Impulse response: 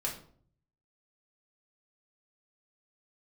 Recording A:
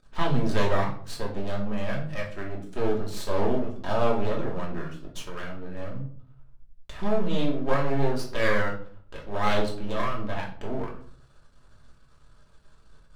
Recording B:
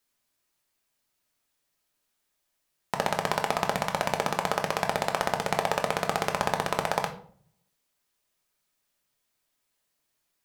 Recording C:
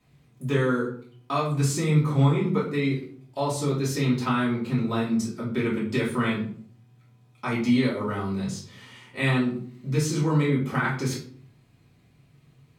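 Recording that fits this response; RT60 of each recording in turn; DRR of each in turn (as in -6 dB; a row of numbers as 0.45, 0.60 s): A; 0.55, 0.55, 0.55 s; -3.0, 3.0, -7.5 dB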